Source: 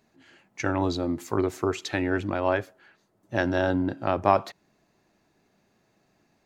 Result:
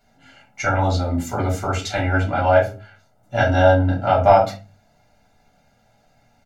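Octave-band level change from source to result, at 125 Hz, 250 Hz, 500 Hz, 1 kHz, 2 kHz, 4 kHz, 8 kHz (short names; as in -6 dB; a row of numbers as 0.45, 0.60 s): +12.5, +2.0, +8.5, +9.5, +7.5, +6.5, +7.5 dB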